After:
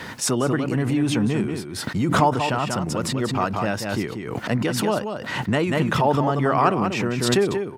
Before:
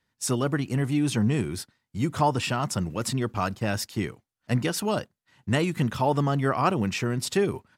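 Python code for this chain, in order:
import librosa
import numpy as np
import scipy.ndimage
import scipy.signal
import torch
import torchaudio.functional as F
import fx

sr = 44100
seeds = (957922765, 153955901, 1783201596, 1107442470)

p1 = fx.highpass(x, sr, hz=220.0, slope=6)
p2 = fx.high_shelf(p1, sr, hz=3200.0, db=-10.5)
p3 = p2 + fx.echo_single(p2, sr, ms=187, db=-7.0, dry=0)
p4 = fx.pre_swell(p3, sr, db_per_s=41.0)
y = p4 * librosa.db_to_amplitude(5.0)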